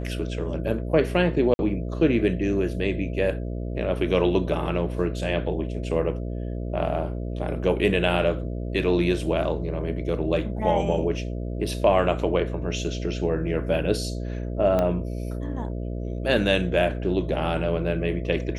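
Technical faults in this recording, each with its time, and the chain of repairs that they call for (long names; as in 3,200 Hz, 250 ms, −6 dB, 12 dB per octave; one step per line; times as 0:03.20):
mains buzz 60 Hz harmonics 11 −30 dBFS
0:01.54–0:01.59: drop-out 51 ms
0:14.79: click −12 dBFS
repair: click removal
hum removal 60 Hz, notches 11
repair the gap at 0:01.54, 51 ms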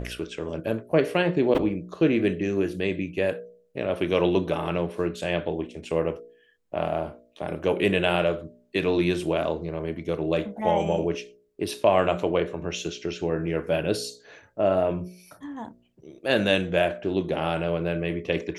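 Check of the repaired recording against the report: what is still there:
0:14.79: click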